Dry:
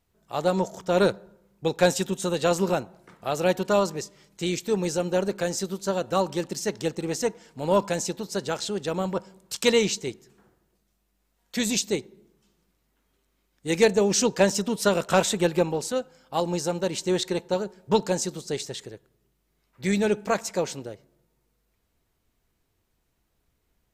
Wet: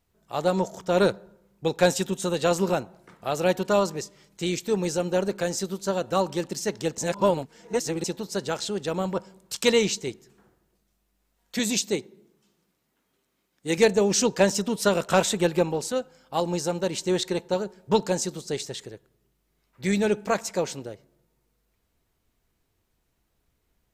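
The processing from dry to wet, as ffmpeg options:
-filter_complex "[0:a]asettb=1/sr,asplit=3[s0][s1][s2];[s0]atrim=end=11.594[s3];[s1]atrim=start=11.59:end=13.78,asetpts=PTS-STARTPTS,afade=t=in:d=0.004:c=qsin,afade=t=out:st=2.186:d=0.004:c=qsin,highpass=120[s4];[s2]atrim=start=13.776[s5];[s3][s4]acrossfade=d=0.004:c1=hsin:c2=qsin[s6];[s6][s5]acrossfade=d=0.004:c1=qsin:c2=hsin,asplit=3[s7][s8][s9];[s7]atrim=end=6.982[s10];[s8]atrim=start=6.978:end=8.042,asetpts=PTS-STARTPTS,areverse[s11];[s9]atrim=start=8.038[s12];[s10][s11]acrossfade=d=0.004:c1=hsin:c2=hsin[s13];[s13][s12]acrossfade=d=0.004:c1=hsin:c2=hsin"

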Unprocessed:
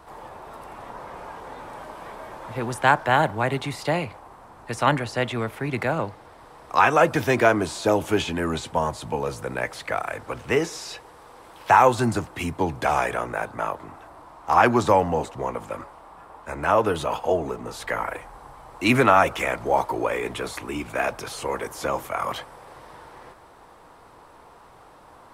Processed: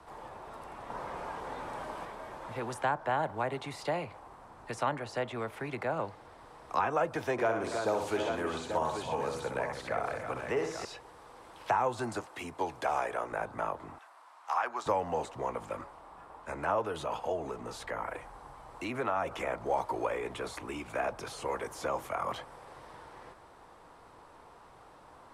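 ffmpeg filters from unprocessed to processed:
-filter_complex "[0:a]asettb=1/sr,asplit=3[s0][s1][s2];[s0]atrim=end=7.324[s3];[s1]atrim=start=7.32:end=10.85,asetpts=PTS-STARTPTS,afade=t=in:d=0.004:c=qsin,afade=t=out:st=3.526:d=0.004:c=qsin,aecho=1:1:62|118|278|322|834:0.473|0.211|0.141|0.316|0.316,atrim=end_sample=155673[s4];[s2]atrim=start=10.846[s5];[s3][s4]acrossfade=d=0.004:c1=hsin:c2=qsin[s6];[s6][s5]acrossfade=d=0.004:c1=qsin:c2=hsin,asettb=1/sr,asplit=3[s7][s8][s9];[s7]atrim=end=12.204[s10];[s8]atrim=start=12.2:end=13.32,asetpts=PTS-STARTPTS,afade=t=in:d=0.004:c=qsin,afade=t=out:st=1.116:d=0.004:c=qsin,bass=f=250:g=-12,treble=f=4000:g=2[s11];[s9]atrim=start=13.316[s12];[s10][s11]acrossfade=d=0.004:c1=hsin:c2=qsin[s13];[s13][s12]acrossfade=d=0.004:c1=qsin:c2=hsin,asettb=1/sr,asplit=3[s14][s15][s16];[s14]atrim=end=13.984[s17];[s15]atrim=start=13.98:end=14.86,asetpts=PTS-STARTPTS,afade=t=in:d=0.004:c=qsin,afade=t=out:st=0.876:d=0.004:c=qsin,highpass=1100[s18];[s16]atrim=start=14.856[s19];[s17][s18]acrossfade=d=0.004:c1=hsin:c2=qsin[s20];[s20][s19]acrossfade=d=0.004:c1=qsin:c2=hsin,asettb=1/sr,asplit=3[s21][s22][s23];[s21]atrim=end=16.824[s24];[s22]atrim=start=16.82:end=19.32,asetpts=PTS-STARTPTS,afade=t=in:d=0.004:c=qsin,afade=t=out:st=2.496:d=0.004:c=qsin,acompressor=threshold=0.0398:ratio=1.5:attack=3.2:release=140:knee=1:detection=peak[s25];[s23]atrim=start=19.316[s26];[s24][s25]acrossfade=d=0.004:c1=hsin:c2=qsin[s27];[s27][s26]acrossfade=d=0.004:c1=qsin:c2=hsin,asplit=3[s28][s29][s30];[s28]atrim=end=0.902[s31];[s29]atrim=start=0.898:end=2.052,asetpts=PTS-STARTPTS,volume=1.58[s32];[s30]atrim=start=2.048[s33];[s31][s32]acrossfade=d=0.004:c1=hsin:c2=hsin[s34];[s34][s33]acrossfade=d=0.004:c1=hsin:c2=hsin,lowpass=11000,acrossover=split=130|400|1300[s35][s36][s37][s38];[s35]acompressor=threshold=0.00501:ratio=4[s39];[s36]acompressor=threshold=0.0112:ratio=4[s40];[s37]acompressor=threshold=0.0794:ratio=4[s41];[s38]acompressor=threshold=0.0126:ratio=4[s42];[s39][s40][s41][s42]amix=inputs=4:normalize=0,volume=0.531"

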